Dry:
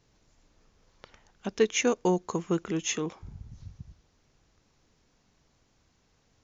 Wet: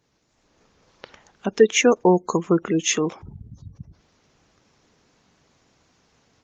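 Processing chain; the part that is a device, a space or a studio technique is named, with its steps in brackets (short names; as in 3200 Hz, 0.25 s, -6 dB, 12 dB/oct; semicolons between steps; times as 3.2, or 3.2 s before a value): noise-suppressed video call (HPF 180 Hz 6 dB/oct; spectral gate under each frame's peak -25 dB strong; AGC gain up to 8.5 dB; gain +2 dB; Opus 20 kbps 48000 Hz)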